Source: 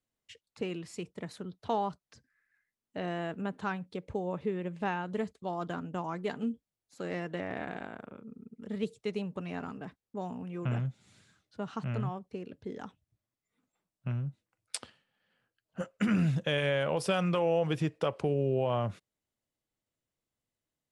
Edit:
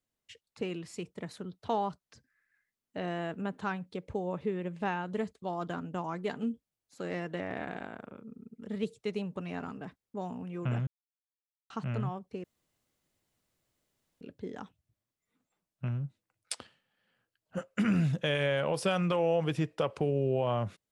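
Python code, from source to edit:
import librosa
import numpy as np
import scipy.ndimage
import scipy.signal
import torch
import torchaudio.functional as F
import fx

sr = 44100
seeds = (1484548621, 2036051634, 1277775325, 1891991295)

y = fx.edit(x, sr, fx.silence(start_s=10.87, length_s=0.83),
    fx.insert_room_tone(at_s=12.44, length_s=1.77), tone=tone)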